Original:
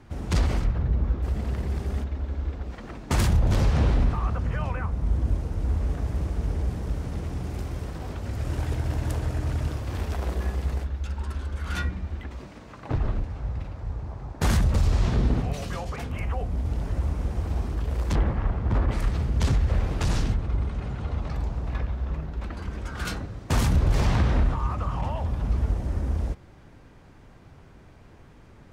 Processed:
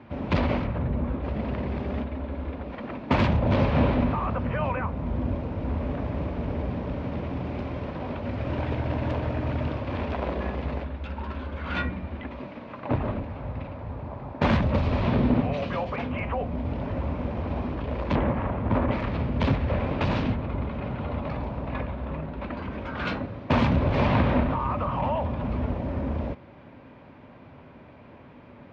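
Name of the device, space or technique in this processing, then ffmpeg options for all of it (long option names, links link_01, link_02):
guitar cabinet: -af "highpass=94,equalizer=frequency=250:width_type=q:width=4:gain=8,equalizer=frequency=580:width_type=q:width=4:gain=9,equalizer=frequency=980:width_type=q:width=4:gain=6,equalizer=frequency=2400:width_type=q:width=4:gain=5,lowpass=frequency=3700:width=0.5412,lowpass=frequency=3700:width=1.3066,volume=1.5dB"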